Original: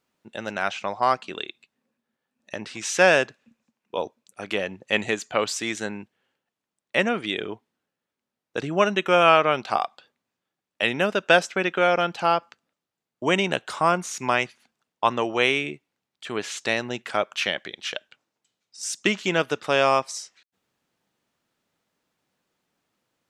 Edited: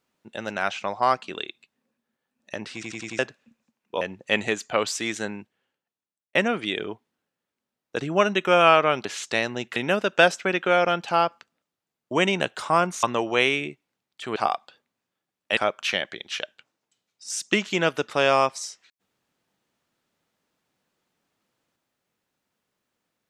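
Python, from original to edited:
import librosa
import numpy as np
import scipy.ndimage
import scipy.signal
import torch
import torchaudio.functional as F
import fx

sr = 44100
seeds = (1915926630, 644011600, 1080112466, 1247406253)

y = fx.edit(x, sr, fx.stutter_over(start_s=2.74, slice_s=0.09, count=5),
    fx.cut(start_s=4.01, length_s=0.61),
    fx.fade_out_span(start_s=5.89, length_s=1.07),
    fx.swap(start_s=9.66, length_s=1.21, other_s=16.39, other_length_s=0.71),
    fx.cut(start_s=14.14, length_s=0.92), tone=tone)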